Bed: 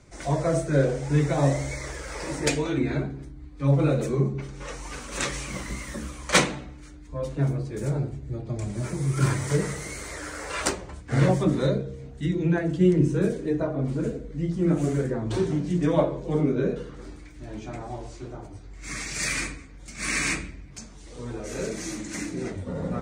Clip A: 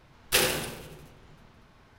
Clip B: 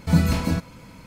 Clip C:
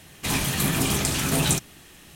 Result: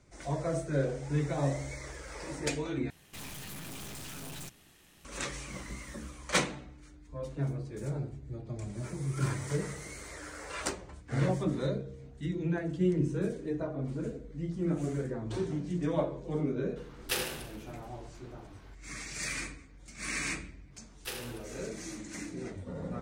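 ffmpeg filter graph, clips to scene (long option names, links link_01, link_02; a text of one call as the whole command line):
ffmpeg -i bed.wav -i cue0.wav -i cue1.wav -i cue2.wav -filter_complex "[1:a]asplit=2[link_01][link_02];[0:a]volume=-8.5dB[link_03];[3:a]aeval=exprs='(tanh(50.1*val(0)+0.65)-tanh(0.65))/50.1':channel_layout=same[link_04];[link_01]acompressor=mode=upward:threshold=-37dB:ratio=2.5:attack=3.2:release=140:knee=2.83:detection=peak[link_05];[link_03]asplit=2[link_06][link_07];[link_06]atrim=end=2.904[link_08];[link_04]atrim=end=2.15,asetpts=PTS-STARTPTS,volume=-8.5dB[link_09];[link_07]atrim=start=5.046[link_10];[link_05]atrim=end=1.98,asetpts=PTS-STARTPTS,volume=-9dB,afade=type=in:duration=0.004:curve=hsin,afade=type=out:start_time=1.976:duration=0.004:curve=hsin,adelay=16770[link_11];[link_02]atrim=end=1.98,asetpts=PTS-STARTPTS,volume=-16.5dB,afade=type=in:duration=0.004:curve=hsin,afade=type=out:start_time=1.976:duration=0.004:curve=hsin,adelay=20730[link_12];[link_08][link_09]acrossfade=duration=0.004:curve1=hsin:curve2=hsin[link_13];[link_13][link_10]acrossfade=duration=0.004:curve1=hsin:curve2=hsin[link_14];[link_14][link_11][link_12]amix=inputs=3:normalize=0" out.wav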